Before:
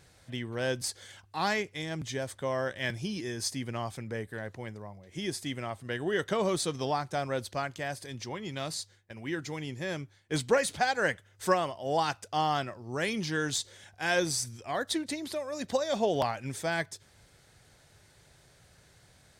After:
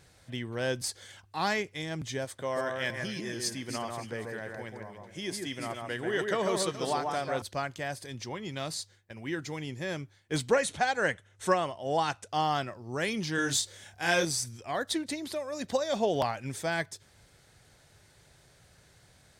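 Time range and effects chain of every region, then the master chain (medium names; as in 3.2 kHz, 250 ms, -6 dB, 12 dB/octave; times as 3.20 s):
2.25–7.42 s: bass shelf 230 Hz -7.5 dB + echo whose repeats swap between lows and highs 141 ms, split 2.1 kHz, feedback 53%, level -3 dB
10.54–12.29 s: low-pass 11 kHz 24 dB/octave + band-stop 4.8 kHz, Q 7.8
13.35–14.25 s: treble shelf 6.5 kHz +5 dB + doubling 29 ms -4 dB
whole clip: none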